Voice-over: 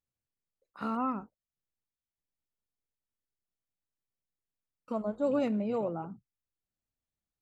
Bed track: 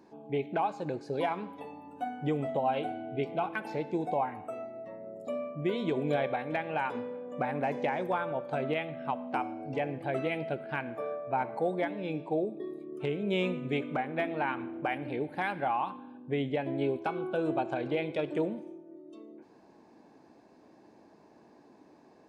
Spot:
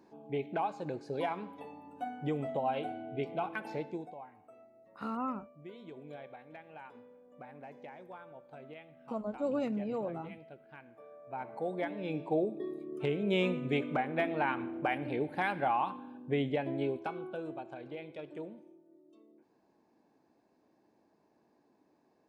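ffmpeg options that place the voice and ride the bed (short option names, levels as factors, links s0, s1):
-filter_complex "[0:a]adelay=4200,volume=0.631[s0];[1:a]volume=5.31,afade=t=out:st=3.78:d=0.36:silence=0.188365,afade=t=in:st=11.11:d=1.25:silence=0.125893,afade=t=out:st=16.36:d=1.2:silence=0.237137[s1];[s0][s1]amix=inputs=2:normalize=0"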